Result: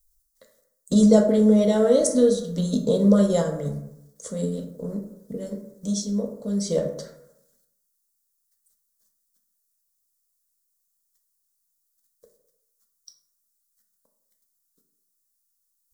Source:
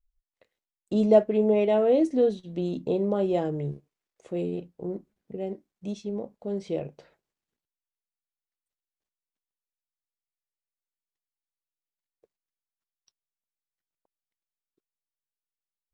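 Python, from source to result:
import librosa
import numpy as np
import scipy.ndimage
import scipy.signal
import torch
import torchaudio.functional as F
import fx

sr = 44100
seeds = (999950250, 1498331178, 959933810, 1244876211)

p1 = fx.high_shelf(x, sr, hz=2900.0, db=7.5)
p2 = fx.hpss(p1, sr, part='harmonic', gain_db=-8)
p3 = fx.bass_treble(p2, sr, bass_db=6, treble_db=13)
p4 = fx.level_steps(p3, sr, step_db=16)
p5 = p3 + (p4 * librosa.db_to_amplitude(3.0))
p6 = fx.fixed_phaser(p5, sr, hz=520.0, stages=8)
p7 = fx.rev_plate(p6, sr, seeds[0], rt60_s=0.84, hf_ratio=0.45, predelay_ms=0, drr_db=3.0)
y = p7 * librosa.db_to_amplitude(4.0)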